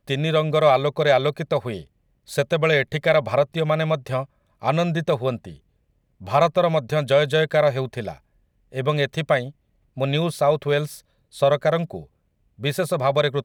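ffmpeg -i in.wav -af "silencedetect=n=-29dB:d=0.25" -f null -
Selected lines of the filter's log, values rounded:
silence_start: 1.81
silence_end: 2.31 | silence_duration: 0.50
silence_start: 4.23
silence_end: 4.63 | silence_duration: 0.40
silence_start: 5.49
silence_end: 6.28 | silence_duration: 0.78
silence_start: 8.13
silence_end: 8.75 | silence_duration: 0.62
silence_start: 9.48
silence_end: 9.97 | silence_duration: 0.49
silence_start: 10.95
silence_end: 11.37 | silence_duration: 0.42
silence_start: 12.01
silence_end: 12.63 | silence_duration: 0.62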